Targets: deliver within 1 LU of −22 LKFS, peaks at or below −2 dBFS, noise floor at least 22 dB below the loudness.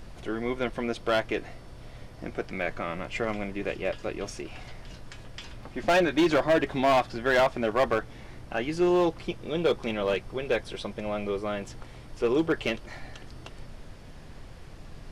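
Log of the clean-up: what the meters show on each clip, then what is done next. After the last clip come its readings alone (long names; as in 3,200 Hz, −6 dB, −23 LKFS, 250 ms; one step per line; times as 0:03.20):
share of clipped samples 1.2%; peaks flattened at −17.5 dBFS; background noise floor −46 dBFS; target noise floor −50 dBFS; integrated loudness −28.0 LKFS; sample peak −17.5 dBFS; target loudness −22.0 LKFS
→ clipped peaks rebuilt −17.5 dBFS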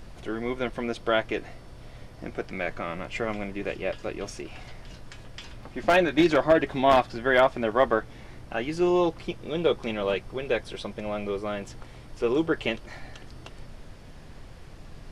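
share of clipped samples 0.0%; background noise floor −46 dBFS; target noise floor −49 dBFS
→ noise reduction from a noise print 6 dB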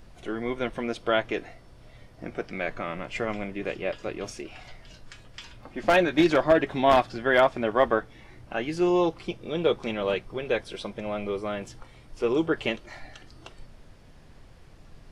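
background noise floor −51 dBFS; integrated loudness −26.5 LKFS; sample peak −8.5 dBFS; target loudness −22.0 LKFS
→ level +4.5 dB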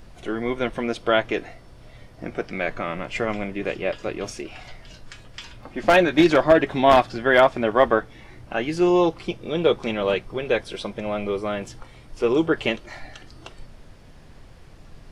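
integrated loudness −22.0 LKFS; sample peak −4.0 dBFS; background noise floor −47 dBFS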